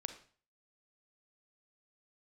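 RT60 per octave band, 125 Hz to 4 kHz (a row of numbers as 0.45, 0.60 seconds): 0.50, 0.45, 0.45, 0.45, 0.40, 0.40 seconds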